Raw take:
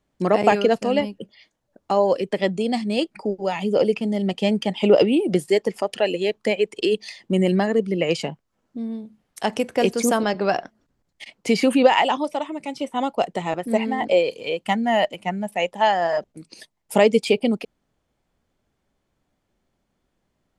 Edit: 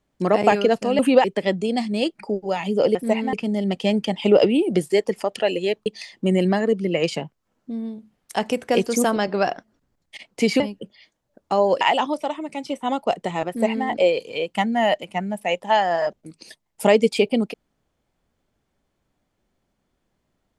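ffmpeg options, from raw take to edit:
-filter_complex "[0:a]asplit=8[a][b][c][d][e][f][g][h];[a]atrim=end=0.992[i];[b]atrim=start=11.668:end=11.922[j];[c]atrim=start=2.198:end=3.912[k];[d]atrim=start=13.588:end=13.972[l];[e]atrim=start=3.908:end=6.442[m];[f]atrim=start=6.928:end=11.672[n];[g]atrim=start=0.988:end=2.202[o];[h]atrim=start=11.918[p];[i][j]acrossfade=d=0.004:c1=hsin:c2=hsin[q];[q][k]acrossfade=d=0.004:c1=hsin:c2=hsin[r];[r][l]acrossfade=d=0.004:c1=hsin:c2=hsin[s];[s][m]acrossfade=d=0.004:c1=hsin:c2=hsin[t];[t][n]acrossfade=d=0.004:c1=hsin:c2=hsin[u];[u][o]acrossfade=d=0.004:c1=hsin:c2=hsin[v];[v][p]acrossfade=d=0.004:c1=hsin:c2=hsin"

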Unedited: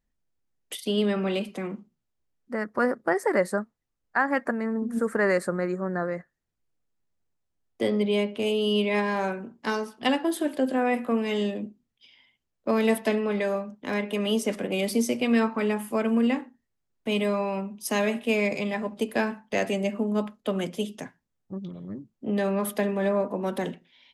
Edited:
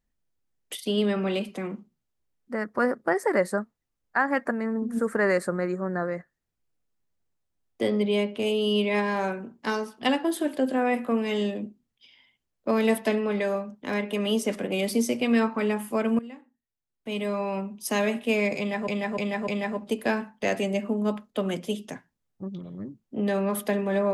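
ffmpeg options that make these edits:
-filter_complex "[0:a]asplit=5[a][b][c][d][e];[a]atrim=end=16.19,asetpts=PTS-STARTPTS,afade=t=out:st=16.186:d=0.004:c=hsin:silence=0.125893[f];[b]atrim=start=16.19:end=18.882,asetpts=PTS-STARTPTS,afade=t=in:d=1.36:c=qua:silence=0.125893[g];[c]atrim=start=18.578:end=18.882[h];[d]atrim=start=18.578:end=18.882[i];[e]atrim=start=18.578[j];[f][g]concat=n=2:v=0:a=1[k];[k][h]acrossfade=d=0.004:c1=hsin:c2=hsin[l];[l][i]acrossfade=d=0.004:c1=hsin:c2=hsin[m];[m][j]acrossfade=d=0.004:c1=hsin:c2=hsin"

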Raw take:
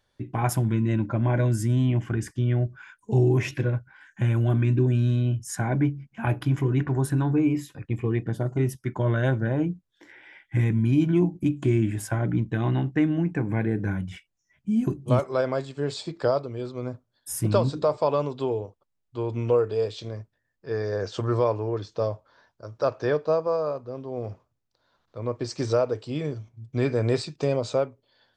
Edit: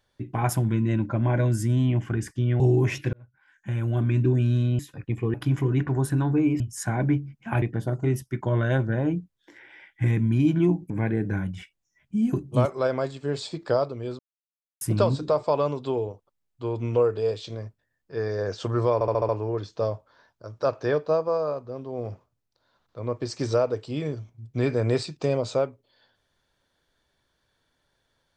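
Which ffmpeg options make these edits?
-filter_complex "[0:a]asplit=15[a][b][c][d][e][f][g][h][i][j][k][l][m][n][o];[a]atrim=end=2.602[p];[b]atrim=start=3.128:end=3.66,asetpts=PTS-STARTPTS,afade=t=out:st=0.528:d=0.004:c=hsin[q];[c]atrim=start=3.66:end=5.322,asetpts=PTS-STARTPTS,afade=t=in:d=1.08[r];[d]atrim=start=7.598:end=8.152[s];[e]atrim=start=6.338:end=7.602[t];[f]atrim=start=5.318:end=6.342[u];[g]atrim=start=8.148:end=11.432[v];[h]atrim=start=13.438:end=16.73,asetpts=PTS-STARTPTS,afade=t=out:st=3.288:d=0.004:c=hsin[w];[i]atrim=start=16.73:end=17.35,asetpts=PTS-STARTPTS,volume=0[x];[j]atrim=start=17.35:end=21.552,asetpts=PTS-STARTPTS,afade=t=in:d=0.004:c=hsin[y];[k]atrim=start=21.478:end=21.552[z];[l]atrim=start=21.478:end=21.552[aa];[m]atrim=start=21.478:end=21.552[ab];[n]atrim=start=21.478:end=21.552[ac];[o]atrim=start=21.478[ad];[q][r]concat=n=2:v=0:a=1[ae];[p][ae]acrossfade=d=0.004:c1=hsin:c2=hsin[af];[af][s]acrossfade=d=0.004:c1=hsin:c2=hsin[ag];[ag][t]acrossfade=d=0.004:c1=hsin:c2=hsin[ah];[ah][u]acrossfade=d=0.004:c1=hsin:c2=hsin[ai];[ai][v]acrossfade=d=0.004:c1=hsin:c2=hsin[aj];[w][x][y]concat=n=3:v=0:a=1[ak];[aj][ak]acrossfade=d=0.004:c1=hsin:c2=hsin[al];[al][z]acrossfade=d=0.004:c1=hsin:c2=hsin[am];[am][aa]acrossfade=d=0.004:c1=hsin:c2=hsin[an];[an][ab]acrossfade=d=0.004:c1=hsin:c2=hsin[ao];[ao][ac]acrossfade=d=0.004:c1=hsin:c2=hsin[ap];[ap][ad]acrossfade=d=0.004:c1=hsin:c2=hsin"

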